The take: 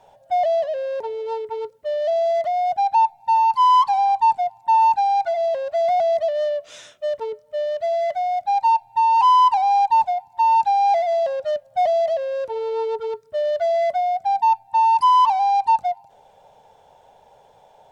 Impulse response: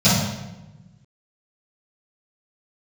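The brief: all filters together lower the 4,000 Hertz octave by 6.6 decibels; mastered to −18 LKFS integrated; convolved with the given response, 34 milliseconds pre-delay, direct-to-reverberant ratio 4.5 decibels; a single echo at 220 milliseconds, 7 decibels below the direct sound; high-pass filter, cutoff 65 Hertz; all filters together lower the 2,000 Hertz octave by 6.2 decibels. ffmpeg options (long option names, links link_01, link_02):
-filter_complex "[0:a]highpass=65,equalizer=frequency=2000:width_type=o:gain=-5.5,equalizer=frequency=4000:width_type=o:gain=-7,aecho=1:1:220:0.447,asplit=2[link_01][link_02];[1:a]atrim=start_sample=2205,adelay=34[link_03];[link_02][link_03]afir=irnorm=-1:irlink=0,volume=-26dB[link_04];[link_01][link_04]amix=inputs=2:normalize=0,volume=-0.5dB"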